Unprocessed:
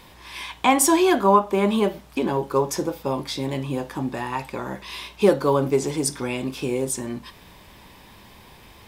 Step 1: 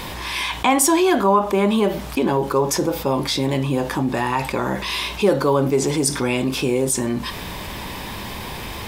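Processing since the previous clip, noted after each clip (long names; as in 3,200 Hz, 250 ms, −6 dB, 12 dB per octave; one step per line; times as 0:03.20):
envelope flattener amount 50%
level −1 dB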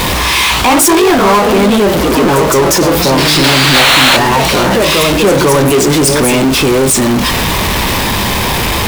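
sound drawn into the spectrogram noise, 0:03.74–0:04.17, 500–4,400 Hz −13 dBFS
delay with pitch and tempo change per echo 102 ms, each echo +2 semitones, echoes 2, each echo −6 dB
power curve on the samples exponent 0.35
level −1.5 dB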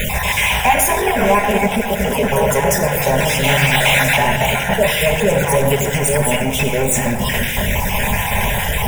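time-frequency cells dropped at random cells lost 30%
phaser with its sweep stopped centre 1,200 Hz, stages 6
rectangular room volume 2,600 cubic metres, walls mixed, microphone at 1.3 metres
level −2.5 dB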